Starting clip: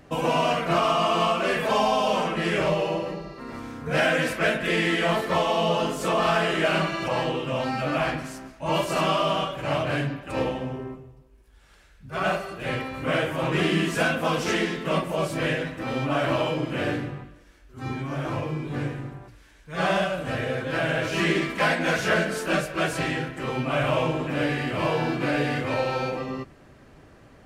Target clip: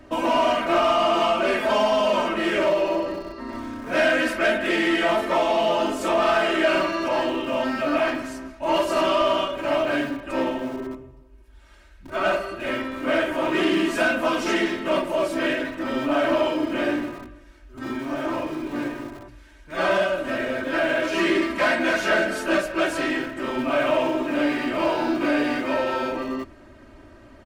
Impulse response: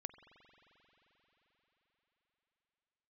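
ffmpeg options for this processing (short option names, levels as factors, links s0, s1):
-filter_complex "[0:a]acrossover=split=150[s0][s1];[s0]aeval=exprs='(mod(126*val(0)+1,2)-1)/126':c=same[s2];[s2][s1]amix=inputs=2:normalize=0,highshelf=f=3900:g=-6,aecho=1:1:3.2:0.77,asoftclip=type=tanh:threshold=0.2,volume=1.26"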